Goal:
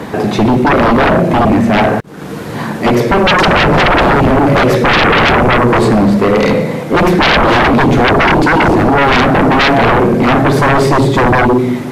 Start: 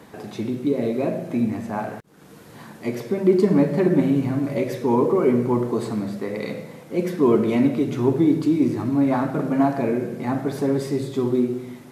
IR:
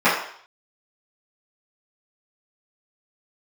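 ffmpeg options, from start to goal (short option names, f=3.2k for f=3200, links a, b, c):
-af "highshelf=f=5.1k:g=-10,aeval=exprs='0.531*sin(PI/2*8.91*val(0)/0.531)':c=same"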